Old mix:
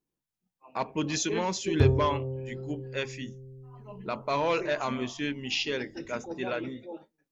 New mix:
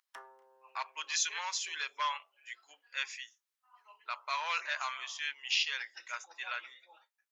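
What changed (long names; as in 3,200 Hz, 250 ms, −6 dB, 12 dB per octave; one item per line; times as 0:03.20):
background: entry −1.65 s
master: add high-pass filter 1,100 Hz 24 dB per octave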